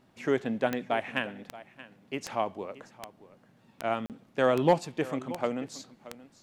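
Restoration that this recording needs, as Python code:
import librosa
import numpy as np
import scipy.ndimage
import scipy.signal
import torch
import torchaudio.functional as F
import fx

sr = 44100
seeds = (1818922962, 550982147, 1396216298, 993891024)

y = fx.fix_declip(x, sr, threshold_db=-12.5)
y = fx.fix_declick_ar(y, sr, threshold=10.0)
y = fx.fix_interpolate(y, sr, at_s=(4.06,), length_ms=38.0)
y = fx.fix_echo_inverse(y, sr, delay_ms=627, level_db=-17.5)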